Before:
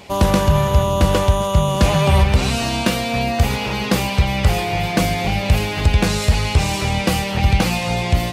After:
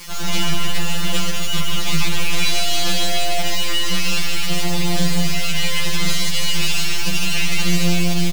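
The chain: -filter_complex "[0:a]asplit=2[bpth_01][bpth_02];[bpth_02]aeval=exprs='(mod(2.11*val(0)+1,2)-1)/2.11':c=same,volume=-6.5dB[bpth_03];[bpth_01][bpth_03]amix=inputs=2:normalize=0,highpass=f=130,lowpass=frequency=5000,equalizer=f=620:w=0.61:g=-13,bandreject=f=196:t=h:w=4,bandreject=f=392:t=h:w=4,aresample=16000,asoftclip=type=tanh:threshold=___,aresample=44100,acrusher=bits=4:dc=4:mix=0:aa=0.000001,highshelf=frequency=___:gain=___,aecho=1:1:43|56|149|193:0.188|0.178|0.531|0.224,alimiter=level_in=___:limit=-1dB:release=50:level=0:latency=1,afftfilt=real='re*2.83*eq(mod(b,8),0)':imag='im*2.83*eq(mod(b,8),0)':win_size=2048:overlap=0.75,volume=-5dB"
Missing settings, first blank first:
-19dB, 2400, 7.5, 11.5dB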